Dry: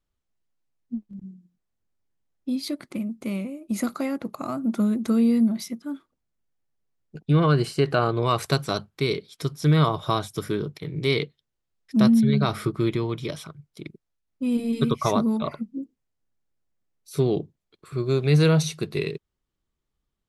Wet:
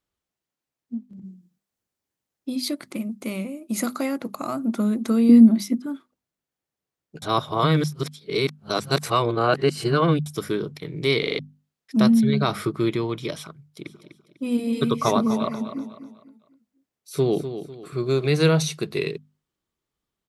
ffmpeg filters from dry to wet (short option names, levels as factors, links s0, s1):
-filter_complex "[0:a]asettb=1/sr,asplit=3[s0][s1][s2];[s0]atrim=end=1.244[s3];[s1]atrim=start=1.24:end=4.65,asetpts=PTS-STARTPTS,afade=t=in:d=0.004:c=qsin,afade=t=out:st=3.406:d=0.004:c=qsin,highshelf=f=4300:g=5[s4];[s2]atrim=start=4.646[s5];[s3][s4]acrossfade=d=0.004:c1=hsin:c2=qsin[s6];[s6][s5]acrossfade=d=0.004:c1=qsin:c2=hsin,asettb=1/sr,asplit=3[s7][s8][s9];[s7]atrim=end=5.294[s10];[s8]atrim=start=5.29:end=5.86,asetpts=PTS-STARTPTS,afade=t=in:d=0.004:c=qsin,afade=t=out:st=0.566:d=0.004:c=qsin,equalizer=f=280:t=o:w=0.75:g=13.5[s11];[s9]atrim=start=5.856[s12];[s10][s11]acrossfade=d=0.004:c1=hsin:c2=qsin[s13];[s13][s12]acrossfade=d=0.004:c1=qsin:c2=hsin,asplit=3[s14][s15][s16];[s14]afade=t=out:st=13.84:d=0.02[s17];[s15]aecho=1:1:249|498|747|996:0.299|0.107|0.0387|0.0139,afade=t=in:st=13.84:d=0.02,afade=t=out:st=18.26:d=0.02[s18];[s16]afade=t=in:st=18.26:d=0.02[s19];[s17][s18][s19]amix=inputs=3:normalize=0,asplit=8[s20][s21][s22][s23][s24][s25][s26][s27];[s20]atrim=end=7.222[s28];[s21]atrim=start=7.218:end=10.262,asetpts=PTS-STARTPTS,areverse[s29];[s22]atrim=start=10.258:end=11.232[s30];[s23]atrim=start=11.188:end=11.232[s31];[s24]atrim=start=11.188:end=11.232[s32];[s25]atrim=start=11.188:end=11.232[s33];[s26]atrim=start=11.188:end=11.232[s34];[s27]atrim=start=11.388[s35];[s28][s29]acrossfade=d=0.004:c1=hsin:c2=hsin[s36];[s36][s30]acrossfade=d=0.004:c1=hsin:c2=hsin[s37];[s37][s31]acrossfade=d=0.004:c1=hsin:c2=hsin[s38];[s38][s32]acrossfade=d=0.004:c1=hsin:c2=hsin[s39];[s39][s33]acrossfade=d=0.004:c1=hsin:c2=hsin[s40];[s40][s34]acrossfade=d=0.004:c1=hsin:c2=hsin[s41];[s41][s35]acrossfade=d=0.004:c1=hsin:c2=hsin,highpass=f=160:p=1,bandreject=f=50:t=h:w=6,bandreject=f=100:t=h:w=6,bandreject=f=150:t=h:w=6,bandreject=f=200:t=h:w=6,bandreject=f=250:t=h:w=6,volume=1.33"